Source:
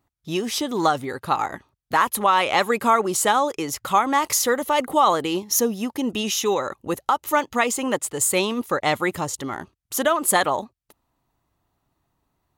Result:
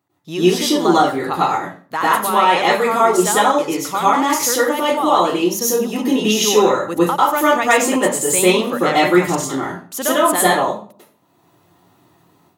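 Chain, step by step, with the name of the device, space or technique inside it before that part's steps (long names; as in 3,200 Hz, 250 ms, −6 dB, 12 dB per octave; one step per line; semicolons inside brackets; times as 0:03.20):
far laptop microphone (convolution reverb RT60 0.45 s, pre-delay 92 ms, DRR −8 dB; high-pass filter 120 Hz 24 dB per octave; automatic gain control)
level −1 dB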